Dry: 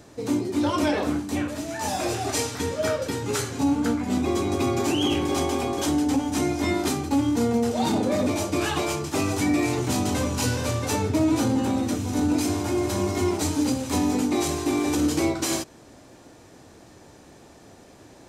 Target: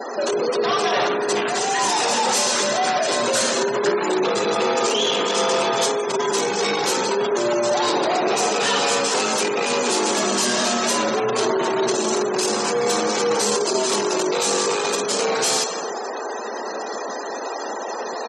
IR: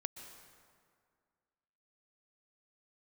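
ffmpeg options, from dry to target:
-filter_complex "[0:a]asplit=2[link_01][link_02];[link_02]acompressor=threshold=-33dB:ratio=16,volume=1.5dB[link_03];[link_01][link_03]amix=inputs=2:normalize=0,equalizer=frequency=2100:width=3.1:gain=-4.5,asoftclip=type=hard:threshold=-21.5dB,asplit=2[link_04][link_05];[link_05]highpass=frequency=720:poles=1,volume=28dB,asoftclip=type=tanh:threshold=-14.5dB[link_06];[link_04][link_06]amix=inputs=2:normalize=0,lowpass=frequency=6100:poles=1,volume=-6dB[link_07];[1:a]atrim=start_sample=2205[link_08];[link_07][link_08]afir=irnorm=-1:irlink=0,afreqshift=120,aecho=1:1:54|73:0.188|0.2,afftfilt=real='re*gte(hypot(re,im),0.0355)':imag='im*gte(hypot(re,im),0.0355)':win_size=1024:overlap=0.75,adynamicequalizer=threshold=0.0112:dfrequency=3300:dqfactor=0.7:tfrequency=3300:tqfactor=0.7:attack=5:release=100:ratio=0.375:range=2.5:mode=boostabove:tftype=highshelf,volume=1.5dB"

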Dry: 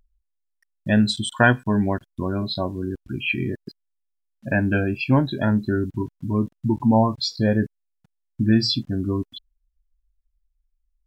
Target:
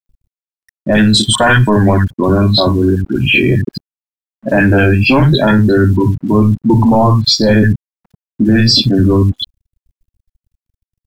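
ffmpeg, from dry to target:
ffmpeg -i in.wav -filter_complex "[0:a]acrossover=split=200|1300[link_01][link_02][link_03];[link_03]adelay=60[link_04];[link_01]adelay=90[link_05];[link_05][link_02][link_04]amix=inputs=3:normalize=0,apsyclip=23dB,aeval=exprs='sgn(val(0))*max(abs(val(0))-0.00841,0)':channel_layout=same,volume=-4.5dB" out.wav

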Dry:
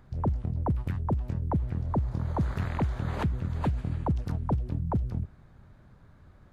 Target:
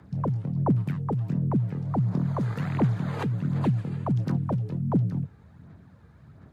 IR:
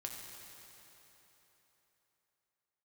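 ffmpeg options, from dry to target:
-af "aphaser=in_gain=1:out_gain=1:delay=2.6:decay=0.43:speed=1.4:type=sinusoidal,afreqshift=58"

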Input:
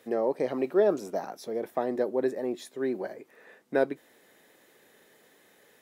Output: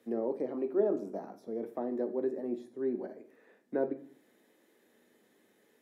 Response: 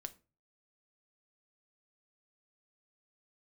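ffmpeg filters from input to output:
-filter_complex "[0:a]equalizer=frequency=260:width=1:gain=10.5[link_01];[1:a]atrim=start_sample=2205,asetrate=27783,aresample=44100[link_02];[link_01][link_02]afir=irnorm=-1:irlink=0,acrossover=split=220|1600[link_03][link_04][link_05];[link_03]tremolo=f=0.75:d=0.59[link_06];[link_05]acompressor=threshold=-59dB:ratio=6[link_07];[link_06][link_04][link_07]amix=inputs=3:normalize=0,volume=-9dB"

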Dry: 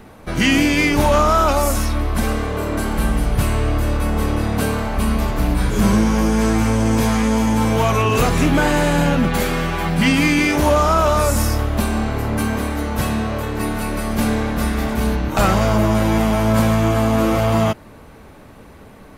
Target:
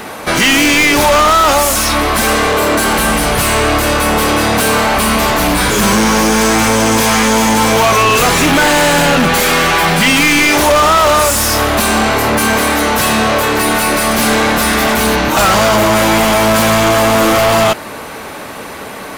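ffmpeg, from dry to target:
ffmpeg -i in.wav -filter_complex "[0:a]highshelf=frequency=5500:gain=10.5,asplit=2[link_01][link_02];[link_02]highpass=frequency=720:poles=1,volume=27dB,asoftclip=type=tanh:threshold=-3dB[link_03];[link_01][link_03]amix=inputs=2:normalize=0,lowpass=frequency=4800:poles=1,volume=-6dB" out.wav

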